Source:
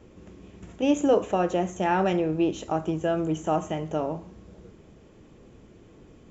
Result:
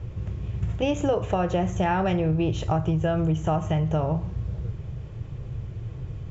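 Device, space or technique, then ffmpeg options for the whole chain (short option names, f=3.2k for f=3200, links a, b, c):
jukebox: -af "lowpass=5.2k,lowshelf=f=170:t=q:w=3:g=12,acompressor=threshold=-26dB:ratio=6,volume=6dB"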